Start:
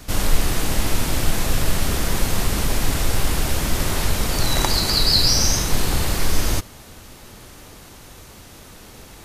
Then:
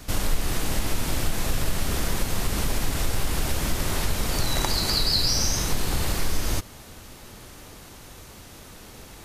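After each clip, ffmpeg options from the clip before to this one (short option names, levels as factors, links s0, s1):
-af "acompressor=threshold=0.112:ratio=2,volume=0.794"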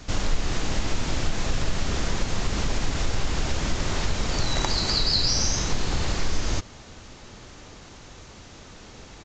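-af "aresample=16000,aresample=44100"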